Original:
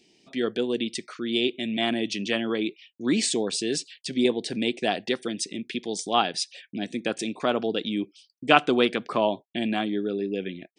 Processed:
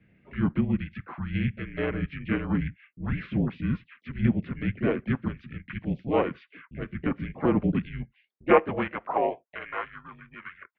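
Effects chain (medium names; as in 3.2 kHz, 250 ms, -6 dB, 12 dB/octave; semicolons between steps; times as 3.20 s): in parallel at -1 dB: compression, threshold -33 dBFS, peak gain reduction 20 dB; on the sum: harmony voices -4 st -8 dB, +4 st -7 dB; high-pass sweep 450 Hz -> 1.4 kHz, 7.86–9.95 s; mistuned SSB -260 Hz 320–2500 Hz; trim -6 dB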